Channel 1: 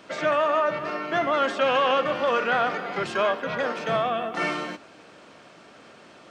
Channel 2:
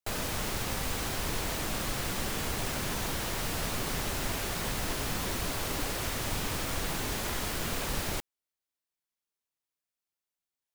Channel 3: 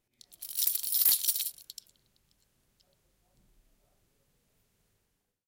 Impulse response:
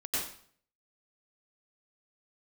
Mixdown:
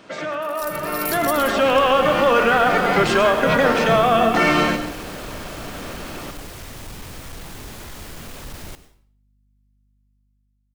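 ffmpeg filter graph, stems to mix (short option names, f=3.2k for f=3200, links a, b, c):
-filter_complex "[0:a]alimiter=limit=-21.5dB:level=0:latency=1:release=94,volume=0.5dB,asplit=2[a][b];[b]volume=-12.5dB[c];[1:a]aeval=exprs='val(0)+0.000708*(sin(2*PI*50*n/s)+sin(2*PI*2*50*n/s)/2+sin(2*PI*3*50*n/s)/3+sin(2*PI*4*50*n/s)/4+sin(2*PI*5*50*n/s)/5)':c=same,asoftclip=type=hard:threshold=-30.5dB,adelay=550,volume=-16dB,asplit=2[d][e];[e]volume=-17.5dB[f];[2:a]volume=-8.5dB[g];[3:a]atrim=start_sample=2205[h];[c][f]amix=inputs=2:normalize=0[i];[i][h]afir=irnorm=-1:irlink=0[j];[a][d][g][j]amix=inputs=4:normalize=0,lowshelf=f=230:g=5,dynaudnorm=f=240:g=11:m=12dB"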